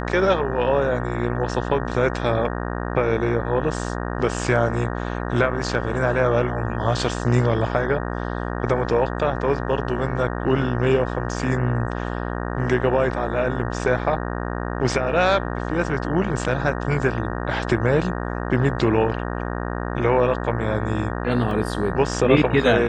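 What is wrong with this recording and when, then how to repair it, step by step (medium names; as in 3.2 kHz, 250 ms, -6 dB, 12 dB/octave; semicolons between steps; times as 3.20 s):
buzz 60 Hz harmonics 31 -27 dBFS
21.51 s: dropout 2.3 ms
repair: de-hum 60 Hz, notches 31; interpolate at 21.51 s, 2.3 ms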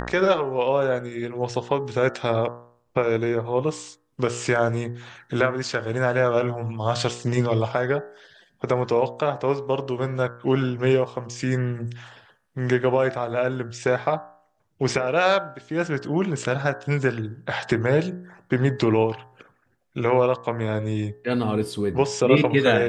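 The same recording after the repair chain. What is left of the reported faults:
nothing left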